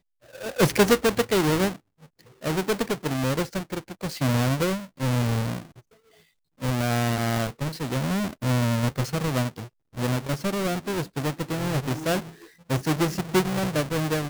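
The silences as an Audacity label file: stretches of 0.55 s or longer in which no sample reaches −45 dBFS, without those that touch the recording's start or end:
5.790000	6.600000	silence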